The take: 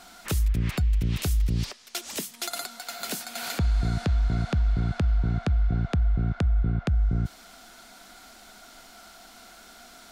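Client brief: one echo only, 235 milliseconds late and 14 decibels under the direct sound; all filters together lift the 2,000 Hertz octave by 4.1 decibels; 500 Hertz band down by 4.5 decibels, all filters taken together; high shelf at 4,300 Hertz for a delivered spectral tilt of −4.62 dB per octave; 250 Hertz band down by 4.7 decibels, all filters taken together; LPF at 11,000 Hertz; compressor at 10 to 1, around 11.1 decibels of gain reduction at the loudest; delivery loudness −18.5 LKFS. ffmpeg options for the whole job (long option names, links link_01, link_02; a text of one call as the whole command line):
ffmpeg -i in.wav -af "lowpass=11000,equalizer=frequency=250:width_type=o:gain=-7,equalizer=frequency=500:width_type=o:gain=-4.5,equalizer=frequency=2000:width_type=o:gain=6.5,highshelf=frequency=4300:gain=-3,acompressor=threshold=-31dB:ratio=10,aecho=1:1:235:0.2,volume=18dB" out.wav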